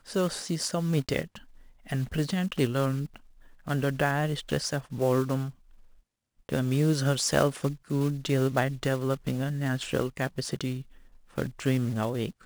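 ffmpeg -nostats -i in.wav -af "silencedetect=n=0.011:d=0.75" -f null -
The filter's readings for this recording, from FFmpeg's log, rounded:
silence_start: 5.50
silence_end: 6.49 | silence_duration: 0.99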